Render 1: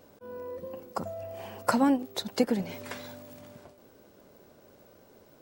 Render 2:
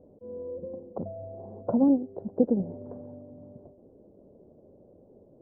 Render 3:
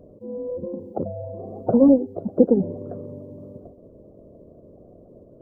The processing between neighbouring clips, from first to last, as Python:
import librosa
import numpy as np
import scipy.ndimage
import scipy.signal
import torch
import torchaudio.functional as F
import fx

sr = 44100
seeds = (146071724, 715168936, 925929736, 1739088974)

y1 = scipy.signal.sosfilt(scipy.signal.cheby2(4, 70, 2700.0, 'lowpass', fs=sr, output='sos'), x)
y1 = y1 * 10.0 ** (3.0 / 20.0)
y2 = fx.spec_quant(y1, sr, step_db=30)
y2 = y2 * 10.0 ** (8.0 / 20.0)